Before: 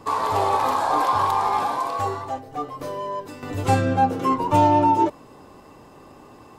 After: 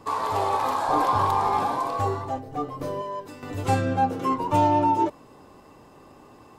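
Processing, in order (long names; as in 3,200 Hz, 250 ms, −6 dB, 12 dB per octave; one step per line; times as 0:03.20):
0:00.88–0:03.02: low-shelf EQ 480 Hz +8.5 dB
level −3.5 dB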